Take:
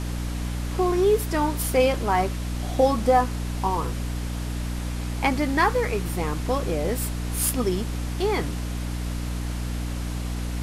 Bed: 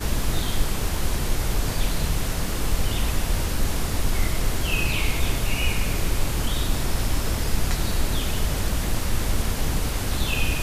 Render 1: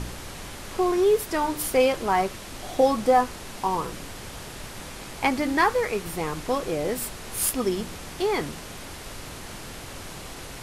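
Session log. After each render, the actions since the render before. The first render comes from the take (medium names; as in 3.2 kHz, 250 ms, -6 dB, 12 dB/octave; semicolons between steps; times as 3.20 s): de-hum 60 Hz, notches 5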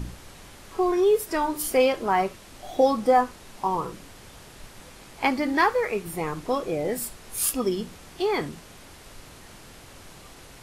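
noise print and reduce 8 dB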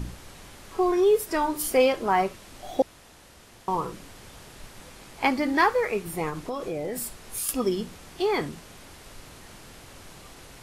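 2.82–3.68 s: room tone; 6.29–7.49 s: compression 5:1, threshold -27 dBFS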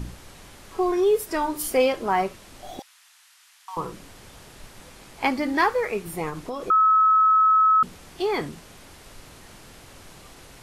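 2.79–3.77 s: Bessel high-pass 1.6 kHz, order 6; 6.70–7.83 s: bleep 1.29 kHz -14 dBFS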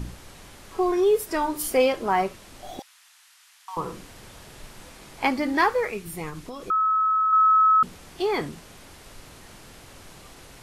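3.82–5.27 s: doubling 45 ms -6.5 dB; 5.90–7.33 s: peaking EQ 660 Hz -7.5 dB 2.3 oct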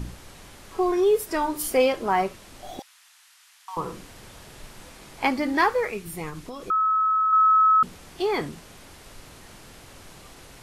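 no audible change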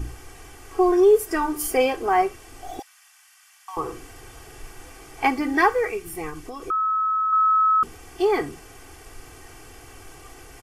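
peaking EQ 3.9 kHz -11 dB 0.34 oct; comb 2.6 ms, depth 80%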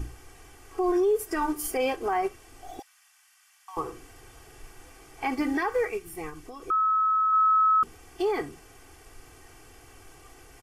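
peak limiter -17.5 dBFS, peak gain reduction 11 dB; upward expansion 1.5:1, over -34 dBFS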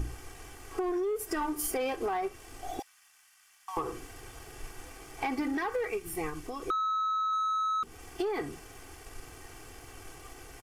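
waveshaping leveller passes 1; compression 10:1, threshold -29 dBFS, peak gain reduction 10 dB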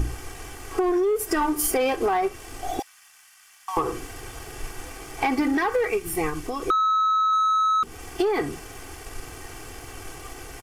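trim +9 dB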